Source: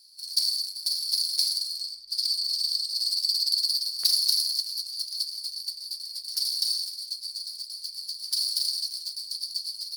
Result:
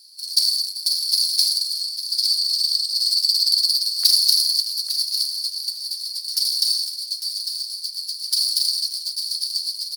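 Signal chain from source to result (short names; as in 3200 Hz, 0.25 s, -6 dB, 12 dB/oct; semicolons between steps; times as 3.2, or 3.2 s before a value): HPF 1500 Hz 6 dB/oct; feedback echo 0.852 s, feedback 18%, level -10 dB; gain +7 dB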